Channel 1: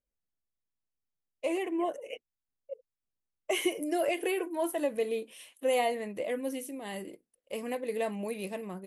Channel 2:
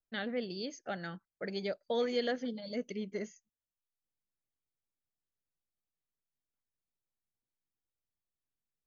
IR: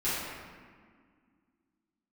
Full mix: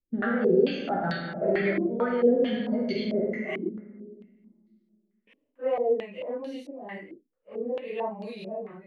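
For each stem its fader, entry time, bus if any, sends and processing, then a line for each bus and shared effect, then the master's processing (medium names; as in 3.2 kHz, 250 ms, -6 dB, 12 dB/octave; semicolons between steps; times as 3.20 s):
-10.0 dB, 0.00 s, muted 3.69–5.27 s, no send, phase randomisation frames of 100 ms
+1.0 dB, 0.00 s, send -4 dB, level held to a coarse grid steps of 21 dB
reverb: on, RT60 1.8 s, pre-delay 5 ms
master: harmonic-percussive split harmonic +8 dB; step-sequenced low-pass 4.5 Hz 310–4200 Hz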